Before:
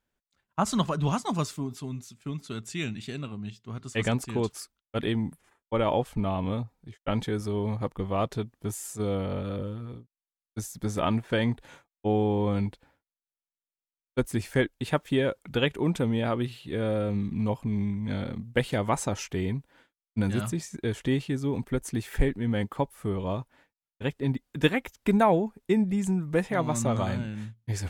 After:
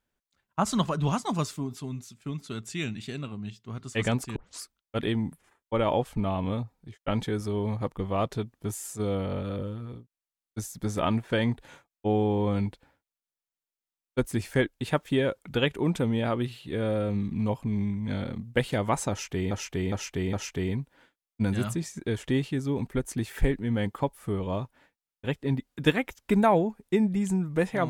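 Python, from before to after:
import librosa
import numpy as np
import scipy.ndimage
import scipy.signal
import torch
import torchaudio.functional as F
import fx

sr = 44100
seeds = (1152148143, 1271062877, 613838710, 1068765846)

y = fx.edit(x, sr, fx.tape_start(start_s=4.36, length_s=0.25),
    fx.repeat(start_s=19.1, length_s=0.41, count=4), tone=tone)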